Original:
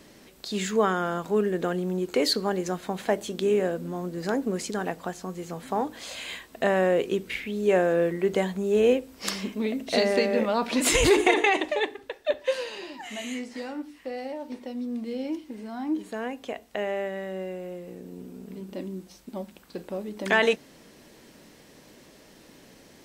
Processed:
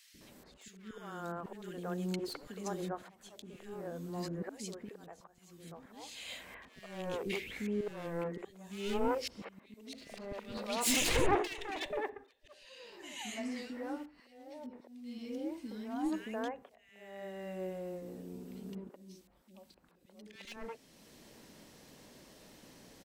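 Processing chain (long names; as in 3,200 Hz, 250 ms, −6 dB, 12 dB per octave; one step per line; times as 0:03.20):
wavefolder on the positive side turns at −22.5 dBFS
volume swells 796 ms
three-band delay without the direct sound highs, lows, mids 140/210 ms, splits 370/1,900 Hz
level −3.5 dB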